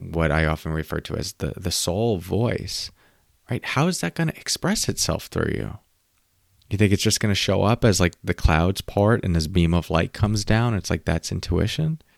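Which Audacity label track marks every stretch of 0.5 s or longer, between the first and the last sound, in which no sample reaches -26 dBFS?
2.860000	3.510000	silence
5.720000	6.710000	silence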